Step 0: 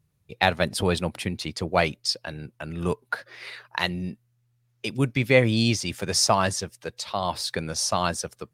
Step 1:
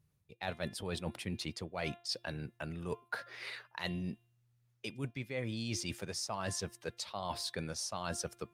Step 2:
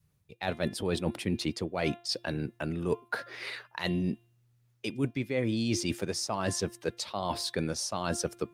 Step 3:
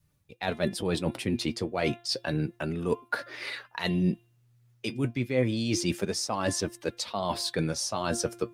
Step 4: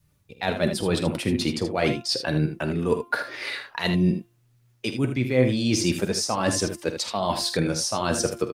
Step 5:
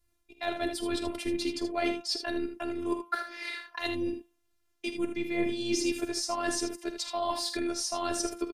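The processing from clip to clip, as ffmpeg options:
-af "bandreject=f=347:t=h:w=4,bandreject=f=694:t=h:w=4,bandreject=f=1.041k:t=h:w=4,bandreject=f=1.388k:t=h:w=4,bandreject=f=1.735k:t=h:w=4,bandreject=f=2.082k:t=h:w=4,bandreject=f=2.429k:t=h:w=4,bandreject=f=2.776k:t=h:w=4,bandreject=f=3.123k:t=h:w=4,bandreject=f=3.47k:t=h:w=4,bandreject=f=3.817k:t=h:w=4,areverse,acompressor=threshold=-30dB:ratio=12,areverse,volume=-4.5dB"
-af "adynamicequalizer=threshold=0.002:dfrequency=310:dqfactor=1.1:tfrequency=310:tqfactor=1.1:attack=5:release=100:ratio=0.375:range=4:mode=boostabove:tftype=bell,volume=5dB"
-af "flanger=delay=3.3:depth=5.3:regen=54:speed=0.3:shape=sinusoidal,volume=6.5dB"
-af "aecho=1:1:47|78:0.237|0.355,volume=4.5dB"
-af "afftfilt=real='hypot(re,im)*cos(PI*b)':imag='0':win_size=512:overlap=0.75,aresample=32000,aresample=44100,volume=-3dB"

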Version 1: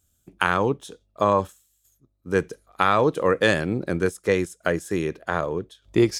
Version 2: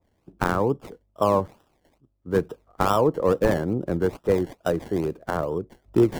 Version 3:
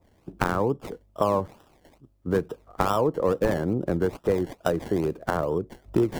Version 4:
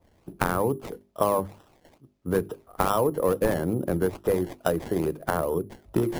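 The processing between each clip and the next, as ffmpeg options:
-filter_complex "[0:a]acrossover=split=320|1400[a][b][c];[c]acrusher=samples=28:mix=1:aa=0.000001:lfo=1:lforange=16.8:lforate=2.3[d];[a][b][d]amix=inputs=3:normalize=0,adynamicequalizer=threshold=0.0158:dfrequency=1700:dqfactor=0.7:tfrequency=1700:tqfactor=0.7:attack=5:release=100:ratio=0.375:range=2:mode=cutabove:tftype=highshelf"
-af "acompressor=threshold=-32dB:ratio=2.5,volume=7.5dB"
-af "bandreject=f=50:t=h:w=6,bandreject=f=100:t=h:w=6,bandreject=f=150:t=h:w=6,bandreject=f=200:t=h:w=6,bandreject=f=250:t=h:w=6,bandreject=f=300:t=h:w=6,bandreject=f=350:t=h:w=6,bandreject=f=400:t=h:w=6,acrusher=samples=4:mix=1:aa=0.000001"

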